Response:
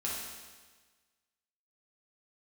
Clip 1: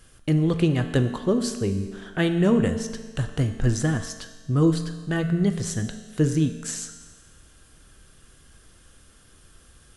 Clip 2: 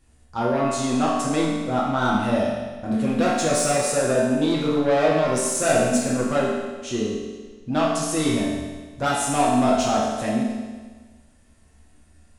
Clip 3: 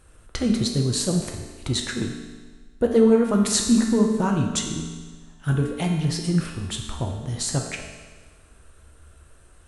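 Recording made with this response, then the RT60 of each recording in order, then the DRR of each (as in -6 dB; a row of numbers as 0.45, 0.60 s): 2; 1.4, 1.4, 1.4 s; 7.0, -6.0, 1.0 dB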